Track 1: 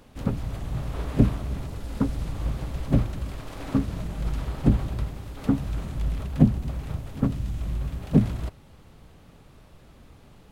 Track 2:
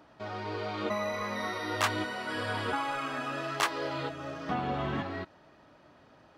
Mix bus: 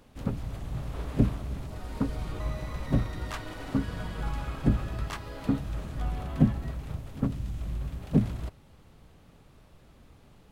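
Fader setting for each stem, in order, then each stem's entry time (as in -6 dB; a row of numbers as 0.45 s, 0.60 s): -4.5 dB, -10.5 dB; 0.00 s, 1.50 s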